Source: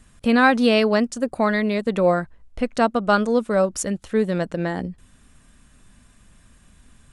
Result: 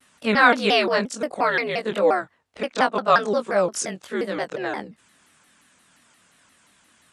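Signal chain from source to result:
every overlapping window played backwards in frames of 52 ms
meter weighting curve A
pitch modulation by a square or saw wave saw down 5.7 Hz, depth 250 cents
level +4.5 dB

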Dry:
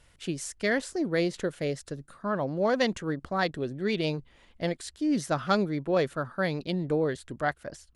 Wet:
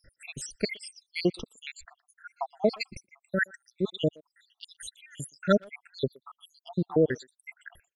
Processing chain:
time-frequency cells dropped at random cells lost 85%
reverb reduction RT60 0.6 s
far-end echo of a speakerphone 120 ms, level −24 dB
level +6 dB

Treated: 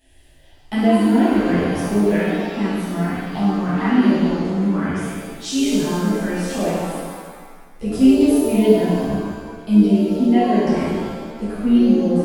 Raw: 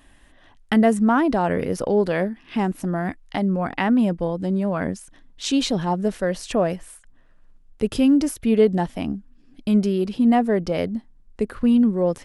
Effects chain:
phaser swept by the level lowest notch 190 Hz, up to 1,200 Hz, full sweep at −14.5 dBFS
reverb with rising layers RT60 1.6 s, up +7 semitones, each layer −8 dB, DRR −10.5 dB
level −6.5 dB

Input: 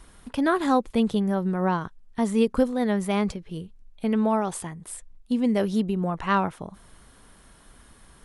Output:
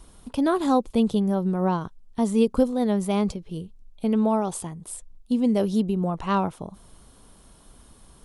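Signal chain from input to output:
parametric band 1,800 Hz −10.5 dB 0.94 octaves
level +1.5 dB

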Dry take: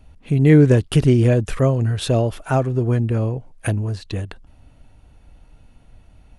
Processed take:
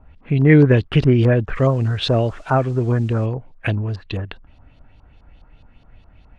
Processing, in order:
auto-filter low-pass saw up 4.8 Hz 1,000–4,700 Hz
0:01.54–0:03.25: noise in a band 570–8,000 Hz −58 dBFS

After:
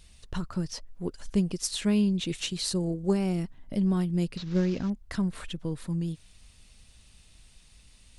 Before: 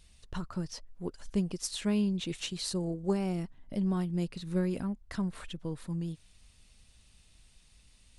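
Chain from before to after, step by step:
0:04.37–0:04.90: variable-slope delta modulation 32 kbit/s
dynamic equaliser 890 Hz, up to −4 dB, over −48 dBFS, Q 0.81
level +5 dB

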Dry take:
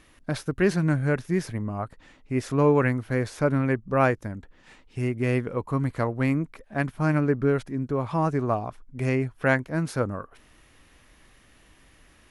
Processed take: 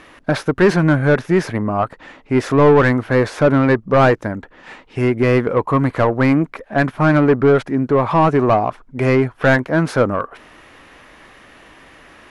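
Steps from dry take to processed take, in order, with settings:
mid-hump overdrive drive 21 dB, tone 1,100 Hz, clips at −8 dBFS
level +6 dB

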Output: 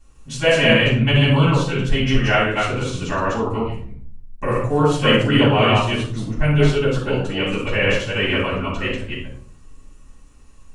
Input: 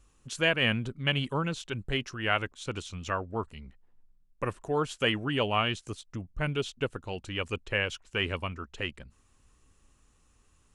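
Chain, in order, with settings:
delay that plays each chunk backwards 145 ms, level −1 dB
rectangular room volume 510 cubic metres, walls furnished, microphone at 8.8 metres
level −2.5 dB

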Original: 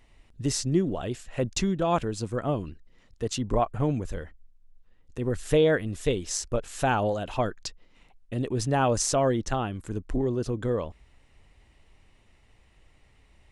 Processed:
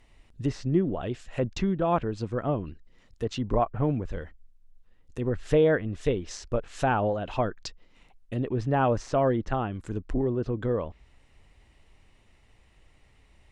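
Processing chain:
treble cut that deepens with the level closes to 2,200 Hz, closed at −24.5 dBFS

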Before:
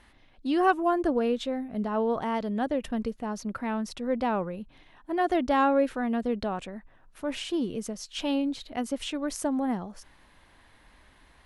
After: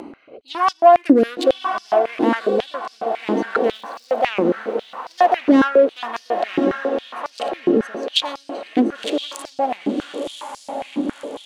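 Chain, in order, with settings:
adaptive Wiener filter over 25 samples
0:00.97–0:01.51: high-shelf EQ 3,600 Hz +10 dB
in parallel at −1 dB: upward compression, threshold −27 dBFS
on the sum: soft clipping −15.5 dBFS, distortion −15 dB
rotating-speaker cabinet horn 1.1 Hz, later 7.5 Hz, at 0:07.70
0:03.65–0:04.27: surface crackle 420 per second −51 dBFS
feedback delay with all-pass diffusion 1,065 ms, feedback 55%, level −9 dB
on a send at −18 dB: convolution reverb RT60 0.65 s, pre-delay 3 ms
on the sum: boost into a limiter +19.5 dB
high-pass on a step sequencer 7.3 Hz 300–5,100 Hz
level −10 dB

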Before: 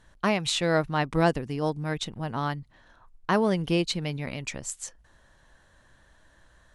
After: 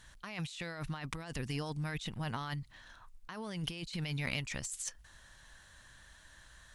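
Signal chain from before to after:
guitar amp tone stack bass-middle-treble 5-5-5
compressor whose output falls as the input rises −48 dBFS, ratio −1
in parallel at −6 dB: soft clipping −40 dBFS, distortion −14 dB
on the sum: level +5 dB

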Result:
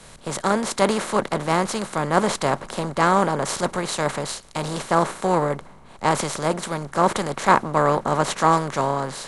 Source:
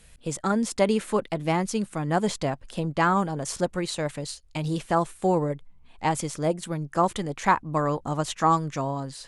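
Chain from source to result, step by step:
compressor on every frequency bin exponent 0.4
multiband upward and downward expander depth 100%
level −1.5 dB

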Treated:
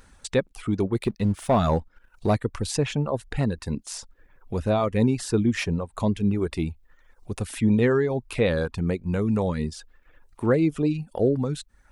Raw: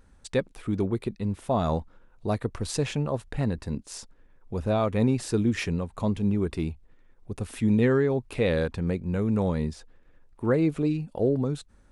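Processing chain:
reverb reduction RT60 0.63 s
0:00.95–0:02.37: leveller curve on the samples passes 1
one half of a high-frequency compander encoder only
level +3 dB

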